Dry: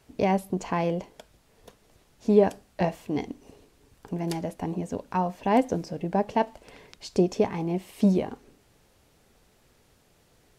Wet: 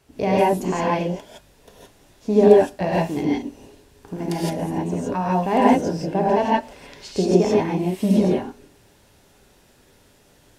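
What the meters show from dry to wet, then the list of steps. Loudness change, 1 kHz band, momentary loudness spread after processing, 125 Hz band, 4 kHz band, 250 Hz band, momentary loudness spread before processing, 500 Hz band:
+7.0 dB, +7.0 dB, 13 LU, +5.5 dB, +7.5 dB, +6.0 dB, 10 LU, +8.0 dB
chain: reverb whose tail is shaped and stops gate 190 ms rising, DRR −6.5 dB

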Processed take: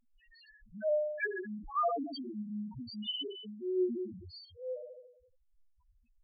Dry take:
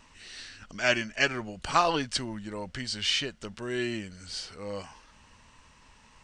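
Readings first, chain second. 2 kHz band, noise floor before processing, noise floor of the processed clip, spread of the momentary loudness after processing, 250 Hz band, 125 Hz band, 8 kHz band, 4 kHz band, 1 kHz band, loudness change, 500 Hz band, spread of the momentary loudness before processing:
−12.5 dB, −58 dBFS, −70 dBFS, 15 LU, −2.5 dB, −11.0 dB, below −40 dB, −11.0 dB, −7.5 dB, −6.5 dB, −1.0 dB, 17 LU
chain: leveller curve on the samples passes 1
spring reverb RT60 1.1 s, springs 33/38/43 ms, chirp 45 ms, DRR 1.5 dB
spectral peaks only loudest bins 1
level −1.5 dB

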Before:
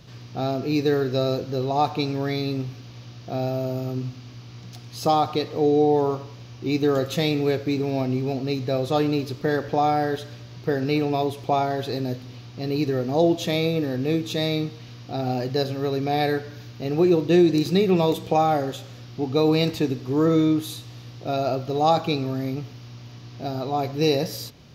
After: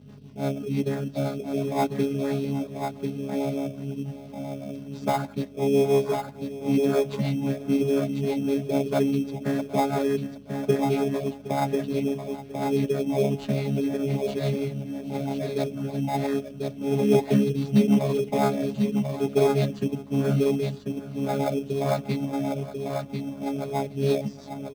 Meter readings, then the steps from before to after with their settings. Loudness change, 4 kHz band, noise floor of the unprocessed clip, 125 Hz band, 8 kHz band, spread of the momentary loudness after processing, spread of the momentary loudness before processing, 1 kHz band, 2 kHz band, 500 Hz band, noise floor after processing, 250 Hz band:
−2.5 dB, −9.0 dB, −43 dBFS, −1.5 dB, −1.0 dB, 10 LU, 16 LU, −6.0 dB, −4.5 dB, −2.0 dB, −42 dBFS, −1.0 dB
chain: channel vocoder with a chord as carrier bare fifth, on C#3
mains-hum notches 60/120/180/240/300/360/420 Hz
rotating-speaker cabinet horn 6 Hz
on a send: single-tap delay 1,043 ms −5 dB
on the sum: dynamic equaliser 2,000 Hz, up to +4 dB, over −45 dBFS, Q 1.1
reverb reduction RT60 0.79 s
mains hum 50 Hz, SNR 17 dB
high-pass filter 160 Hz 12 dB per octave
repeating echo 765 ms, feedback 37%, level −16.5 dB
in parallel at −5.5 dB: sample-rate reduction 2,900 Hz, jitter 0%

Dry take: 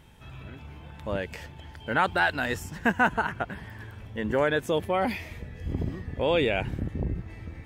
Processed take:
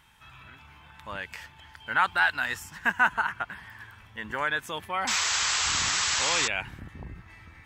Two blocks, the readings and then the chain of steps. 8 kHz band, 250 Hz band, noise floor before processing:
+21.0 dB, −12.5 dB, −46 dBFS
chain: sound drawn into the spectrogram noise, 0:05.07–0:06.48, 330–8,000 Hz −27 dBFS
low shelf with overshoot 750 Hz −11.5 dB, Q 1.5

